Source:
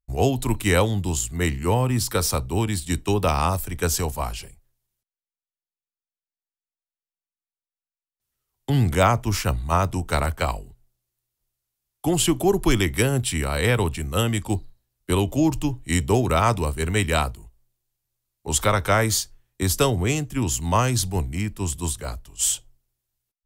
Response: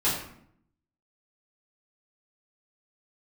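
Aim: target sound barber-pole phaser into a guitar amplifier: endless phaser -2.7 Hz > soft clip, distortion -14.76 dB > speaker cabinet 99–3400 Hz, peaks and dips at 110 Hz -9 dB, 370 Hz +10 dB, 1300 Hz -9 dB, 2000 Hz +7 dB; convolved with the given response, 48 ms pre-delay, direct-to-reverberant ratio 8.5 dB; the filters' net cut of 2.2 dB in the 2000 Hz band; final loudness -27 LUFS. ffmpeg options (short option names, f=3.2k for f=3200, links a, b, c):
-filter_complex "[0:a]equalizer=f=2k:t=o:g=-5.5,asplit=2[a][b];[1:a]atrim=start_sample=2205,adelay=48[c];[b][c]afir=irnorm=-1:irlink=0,volume=-20dB[d];[a][d]amix=inputs=2:normalize=0,asplit=2[e][f];[f]afreqshift=-2.7[g];[e][g]amix=inputs=2:normalize=1,asoftclip=threshold=-18dB,highpass=99,equalizer=f=110:t=q:w=4:g=-9,equalizer=f=370:t=q:w=4:g=10,equalizer=f=1.3k:t=q:w=4:g=-9,equalizer=f=2k:t=q:w=4:g=7,lowpass=f=3.4k:w=0.5412,lowpass=f=3.4k:w=1.3066"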